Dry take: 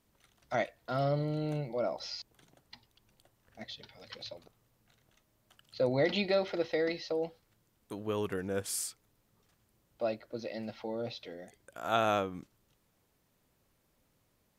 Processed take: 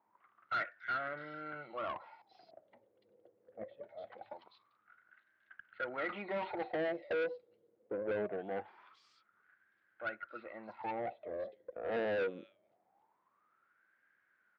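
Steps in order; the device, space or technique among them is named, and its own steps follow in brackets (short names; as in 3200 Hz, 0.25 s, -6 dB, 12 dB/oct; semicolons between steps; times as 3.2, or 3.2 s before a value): bands offset in time lows, highs 0.29 s, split 3000 Hz; wah-wah guitar rig (wah 0.23 Hz 480–1600 Hz, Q 13; tube stage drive 51 dB, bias 0.25; speaker cabinet 85–3900 Hz, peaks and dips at 100 Hz +6 dB, 200 Hz +7 dB, 340 Hz +7 dB, 990 Hz -3 dB, 1500 Hz +3 dB, 2100 Hz +5 dB); gain +18 dB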